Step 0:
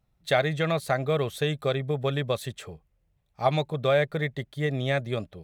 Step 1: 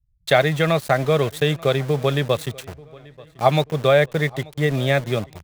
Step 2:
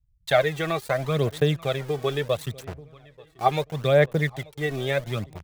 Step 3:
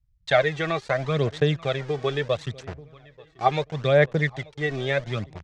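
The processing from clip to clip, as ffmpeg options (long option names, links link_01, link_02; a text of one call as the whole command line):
ffmpeg -i in.wav -filter_complex "[0:a]acrossover=split=110[link_01][link_02];[link_02]aeval=exprs='val(0)*gte(abs(val(0)),0.0126)':channel_layout=same[link_03];[link_01][link_03]amix=inputs=2:normalize=0,asplit=2[link_04][link_05];[link_05]adelay=885,lowpass=frequency=4600:poles=1,volume=-23dB,asplit=2[link_06][link_07];[link_07]adelay=885,lowpass=frequency=4600:poles=1,volume=0.43,asplit=2[link_08][link_09];[link_09]adelay=885,lowpass=frequency=4600:poles=1,volume=0.43[link_10];[link_04][link_06][link_08][link_10]amix=inputs=4:normalize=0,volume=7dB" out.wav
ffmpeg -i in.wav -af "aphaser=in_gain=1:out_gain=1:delay=2.7:decay=0.56:speed=0.74:type=sinusoidal,volume=-7dB" out.wav
ffmpeg -i in.wav -af "lowpass=frequency=6600:width=0.5412,lowpass=frequency=6600:width=1.3066,equalizer=frequency=1800:width_type=o:width=0.57:gain=3" out.wav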